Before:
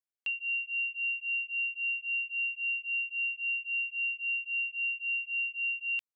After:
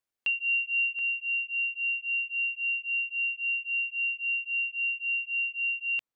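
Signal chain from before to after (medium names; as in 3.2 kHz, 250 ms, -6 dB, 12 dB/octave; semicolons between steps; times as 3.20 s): treble shelf 2.6 kHz -5 dB, from 0.99 s -10 dB; trim +8 dB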